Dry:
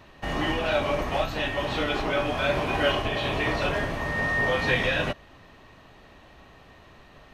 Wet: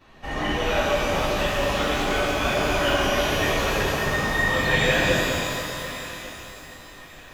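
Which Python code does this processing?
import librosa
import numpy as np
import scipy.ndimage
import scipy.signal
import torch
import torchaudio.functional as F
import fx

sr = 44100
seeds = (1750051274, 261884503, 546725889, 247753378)

p1 = fx.chorus_voices(x, sr, voices=4, hz=0.76, base_ms=11, depth_ms=3.3, mix_pct=65)
p2 = p1 + fx.echo_thinned(p1, sr, ms=1145, feedback_pct=43, hz=920.0, wet_db=-17.0, dry=0)
y = fx.rev_shimmer(p2, sr, seeds[0], rt60_s=3.0, semitones=12, shimmer_db=-8, drr_db=-4.0)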